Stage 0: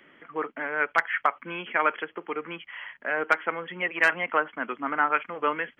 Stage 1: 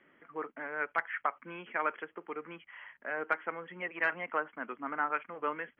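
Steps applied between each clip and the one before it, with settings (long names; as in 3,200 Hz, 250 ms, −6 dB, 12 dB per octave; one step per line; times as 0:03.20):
low-pass filter 2,300 Hz 12 dB per octave
level −8 dB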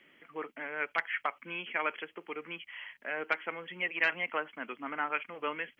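high shelf with overshoot 2,000 Hz +9.5 dB, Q 1.5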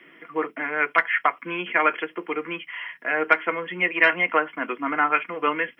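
convolution reverb, pre-delay 3 ms, DRR 5.5 dB
level +4.5 dB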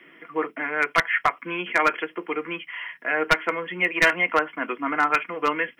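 wavefolder on the positive side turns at −11.5 dBFS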